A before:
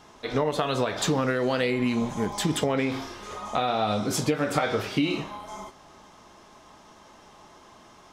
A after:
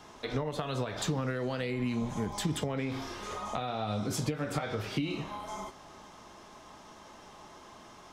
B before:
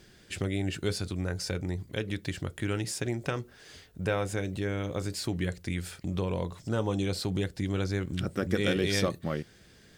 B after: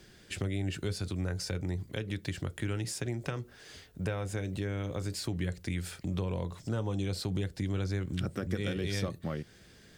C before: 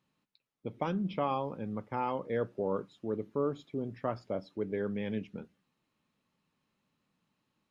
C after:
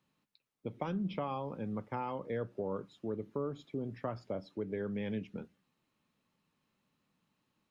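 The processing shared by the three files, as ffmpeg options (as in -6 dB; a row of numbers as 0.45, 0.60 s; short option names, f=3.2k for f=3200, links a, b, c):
-filter_complex "[0:a]acrossover=split=150[a][b];[b]acompressor=threshold=-35dB:ratio=3[c];[a][c]amix=inputs=2:normalize=0"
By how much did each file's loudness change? -7.5, -3.5, -4.0 LU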